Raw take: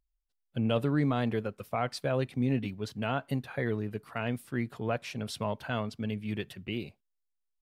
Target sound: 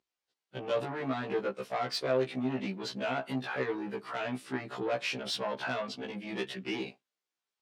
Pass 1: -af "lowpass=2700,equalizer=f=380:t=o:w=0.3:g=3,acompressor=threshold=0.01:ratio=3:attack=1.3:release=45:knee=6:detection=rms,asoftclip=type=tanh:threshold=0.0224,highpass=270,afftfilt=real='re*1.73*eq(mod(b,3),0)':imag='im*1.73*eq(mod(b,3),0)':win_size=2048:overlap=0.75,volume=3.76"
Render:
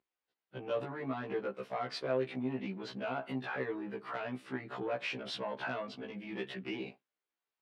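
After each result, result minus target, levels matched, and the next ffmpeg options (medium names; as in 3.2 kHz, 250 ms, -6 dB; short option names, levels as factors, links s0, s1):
compression: peak gain reduction +6.5 dB; 4 kHz band -2.5 dB
-af "lowpass=2700,equalizer=f=380:t=o:w=0.3:g=3,acompressor=threshold=0.0299:ratio=3:attack=1.3:release=45:knee=6:detection=rms,asoftclip=type=tanh:threshold=0.0224,highpass=270,afftfilt=real='re*1.73*eq(mod(b,3),0)':imag='im*1.73*eq(mod(b,3),0)':win_size=2048:overlap=0.75,volume=3.76"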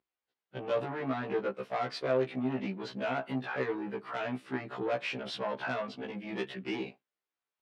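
4 kHz band -4.5 dB
-af "lowpass=5600,equalizer=f=380:t=o:w=0.3:g=3,acompressor=threshold=0.0299:ratio=3:attack=1.3:release=45:knee=6:detection=rms,asoftclip=type=tanh:threshold=0.0224,highpass=270,afftfilt=real='re*1.73*eq(mod(b,3),0)':imag='im*1.73*eq(mod(b,3),0)':win_size=2048:overlap=0.75,volume=3.76"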